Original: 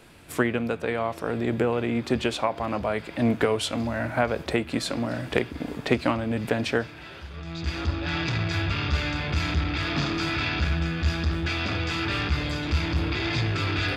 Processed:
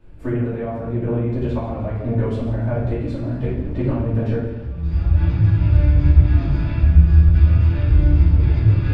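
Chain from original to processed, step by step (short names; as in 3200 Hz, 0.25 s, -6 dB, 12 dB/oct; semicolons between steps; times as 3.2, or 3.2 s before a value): regenerating reverse delay 0.129 s, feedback 68%, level -11.5 dB; tilt -4.5 dB/oct; time stretch by phase-locked vocoder 0.64×; shoebox room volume 150 m³, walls mixed, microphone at 2.6 m; gain -14.5 dB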